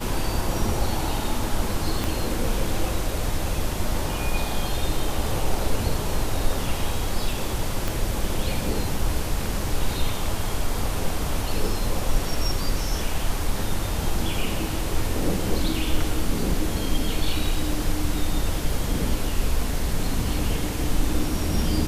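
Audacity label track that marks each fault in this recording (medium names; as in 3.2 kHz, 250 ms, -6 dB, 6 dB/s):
2.040000	2.040000	pop
7.880000	7.880000	pop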